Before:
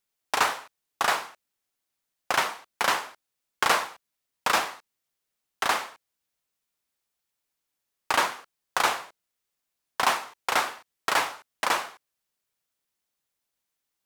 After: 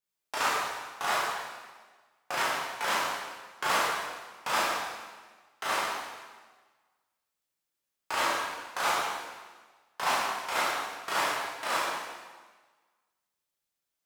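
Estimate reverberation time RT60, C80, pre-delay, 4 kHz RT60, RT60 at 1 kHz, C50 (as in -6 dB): 1.4 s, 1.5 dB, 6 ms, 1.3 s, 1.4 s, -1.0 dB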